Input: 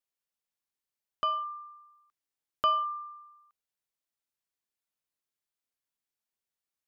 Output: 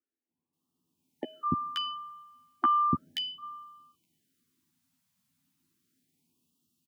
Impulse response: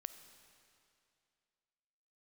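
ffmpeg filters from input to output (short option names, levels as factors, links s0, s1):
-filter_complex "[0:a]lowshelf=f=400:t=q:w=3:g=12.5,acompressor=threshold=0.0224:ratio=6,highpass=f=100:w=0.5412,highpass=f=100:w=1.3066,asplit=2[s0][s1];[1:a]atrim=start_sample=2205,asetrate=57330,aresample=44100,lowpass=2700[s2];[s1][s2]afir=irnorm=-1:irlink=0,volume=0.376[s3];[s0][s3]amix=inputs=2:normalize=0,dynaudnorm=f=110:g=9:m=2.99,asplit=2[s4][s5];[s5]adelay=12,volume=0.631[s6];[s4][s6]amix=inputs=2:normalize=0,acrossover=split=330|1700[s7][s8][s9];[s7]adelay=290[s10];[s9]adelay=530[s11];[s10][s8][s11]amix=inputs=3:normalize=0,afftfilt=real='re*(1-between(b*sr/1024,350*pow(1900/350,0.5+0.5*sin(2*PI*0.34*pts/sr))/1.41,350*pow(1900/350,0.5+0.5*sin(2*PI*0.34*pts/sr))*1.41))':imag='im*(1-between(b*sr/1024,350*pow(1900/350,0.5+0.5*sin(2*PI*0.34*pts/sr))/1.41,350*pow(1900/350,0.5+0.5*sin(2*PI*0.34*pts/sr))*1.41))':win_size=1024:overlap=0.75,volume=1.26"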